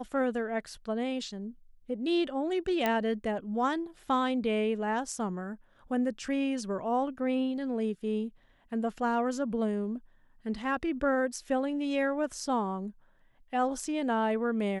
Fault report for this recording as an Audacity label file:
2.860000	2.860000	click −14 dBFS

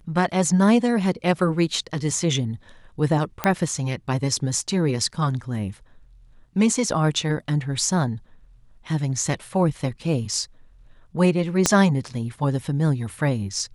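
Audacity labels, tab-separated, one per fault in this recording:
3.440000	3.440000	click −7 dBFS
11.660000	11.660000	click −2 dBFS

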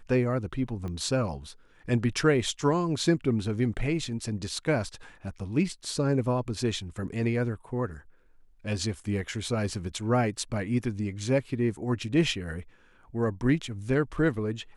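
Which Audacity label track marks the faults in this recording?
0.880000	0.880000	click −26 dBFS

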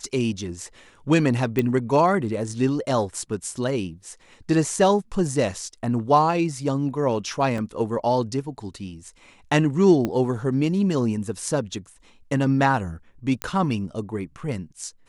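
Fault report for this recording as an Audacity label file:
1.590000	1.590000	click −10 dBFS
7.580000	7.580000	drop-out 2.8 ms
10.050000	10.050000	click −12 dBFS
13.420000	13.420000	click −10 dBFS

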